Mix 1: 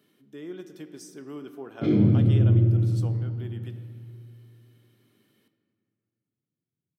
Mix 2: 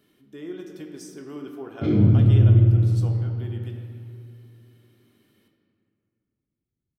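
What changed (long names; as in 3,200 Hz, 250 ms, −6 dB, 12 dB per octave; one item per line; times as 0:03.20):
speech: send +7.5 dB
master: remove high-pass filter 120 Hz 24 dB per octave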